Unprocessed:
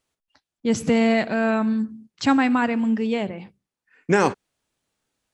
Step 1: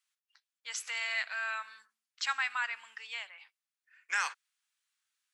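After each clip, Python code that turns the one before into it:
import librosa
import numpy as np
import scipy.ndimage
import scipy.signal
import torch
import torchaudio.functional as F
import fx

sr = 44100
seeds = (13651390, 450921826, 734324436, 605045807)

y = scipy.signal.sosfilt(scipy.signal.butter(4, 1300.0, 'highpass', fs=sr, output='sos'), x)
y = y * 10.0 ** (-4.5 / 20.0)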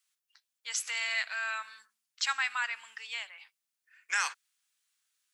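y = fx.high_shelf(x, sr, hz=3900.0, db=7.5)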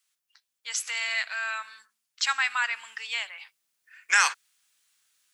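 y = fx.rider(x, sr, range_db=10, speed_s=2.0)
y = y * 10.0 ** (3.5 / 20.0)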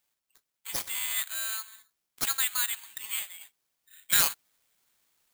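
y = (np.kron(x[::8], np.eye(8)[0]) * 8)[:len(x)]
y = y * 10.0 ** (-11.0 / 20.0)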